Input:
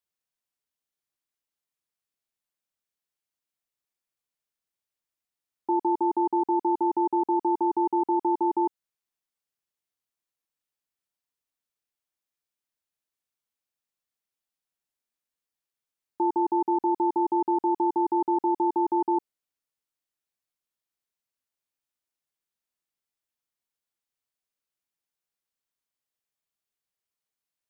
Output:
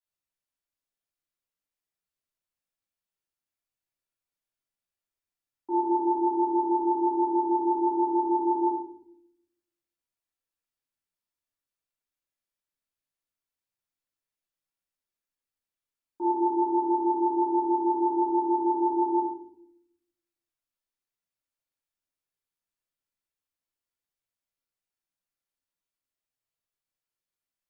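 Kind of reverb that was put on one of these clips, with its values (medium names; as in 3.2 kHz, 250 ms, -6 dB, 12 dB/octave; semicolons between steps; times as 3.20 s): simulated room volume 160 m³, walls mixed, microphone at 3 m; trim -13 dB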